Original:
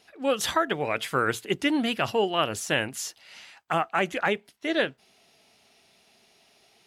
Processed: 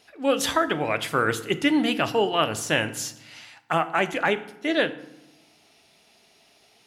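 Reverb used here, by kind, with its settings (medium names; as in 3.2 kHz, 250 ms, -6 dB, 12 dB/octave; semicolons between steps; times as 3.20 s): FDN reverb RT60 0.84 s, low-frequency decay 1.55×, high-frequency decay 0.65×, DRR 10.5 dB; trim +2 dB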